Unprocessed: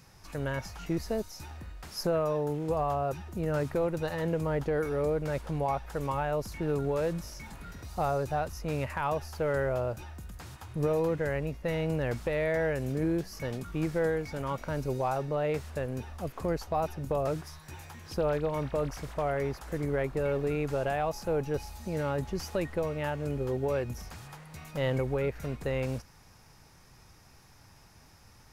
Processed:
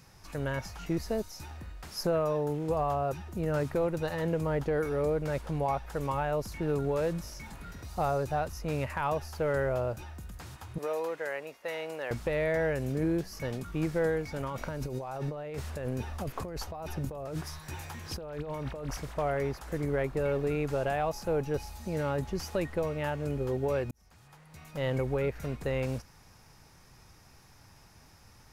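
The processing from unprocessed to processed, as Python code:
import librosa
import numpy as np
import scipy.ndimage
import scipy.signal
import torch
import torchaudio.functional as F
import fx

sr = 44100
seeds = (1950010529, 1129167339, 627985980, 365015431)

y = fx.highpass(x, sr, hz=580.0, slope=12, at=(10.78, 12.11))
y = fx.over_compress(y, sr, threshold_db=-36.0, ratio=-1.0, at=(14.43, 18.97))
y = fx.edit(y, sr, fx.fade_in_span(start_s=23.91, length_s=1.17), tone=tone)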